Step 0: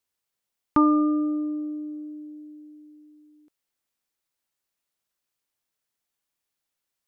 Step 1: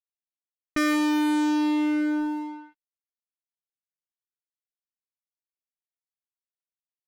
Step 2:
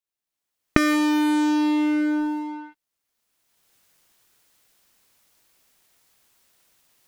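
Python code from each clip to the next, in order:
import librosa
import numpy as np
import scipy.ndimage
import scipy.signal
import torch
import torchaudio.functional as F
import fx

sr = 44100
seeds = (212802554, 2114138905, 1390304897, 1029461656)

y1 = fx.fuzz(x, sr, gain_db=40.0, gate_db=-44.0)
y1 = fx.env_lowpass(y1, sr, base_hz=1300.0, full_db=-17.0)
y1 = y1 * librosa.db_to_amplitude(-8.5)
y2 = fx.recorder_agc(y1, sr, target_db=-27.5, rise_db_per_s=23.0, max_gain_db=30)
y2 = y2 * librosa.db_to_amplitude(2.5)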